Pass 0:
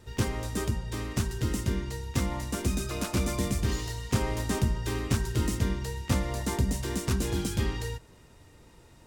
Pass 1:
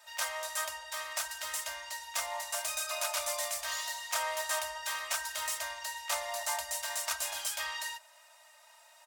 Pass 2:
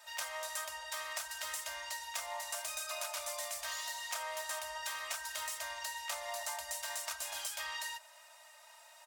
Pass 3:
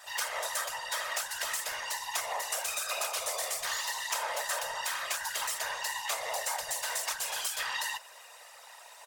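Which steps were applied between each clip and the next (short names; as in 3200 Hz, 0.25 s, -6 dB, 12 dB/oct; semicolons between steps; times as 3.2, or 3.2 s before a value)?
elliptic high-pass 620 Hz, stop band 40 dB; high shelf 7500 Hz +6 dB; comb 3.2 ms, depth 65%
compressor, threshold -38 dBFS, peak gain reduction 10 dB; gain +1 dB
whisperiser; gain +6.5 dB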